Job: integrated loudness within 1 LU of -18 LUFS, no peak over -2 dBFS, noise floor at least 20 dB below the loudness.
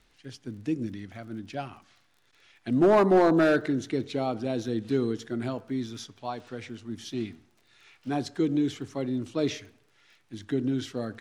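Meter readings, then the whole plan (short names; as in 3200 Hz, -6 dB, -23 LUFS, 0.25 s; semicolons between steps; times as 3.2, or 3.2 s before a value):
ticks 30/s; loudness -28.0 LUFS; peak -14.0 dBFS; loudness target -18.0 LUFS
-> de-click; gain +10 dB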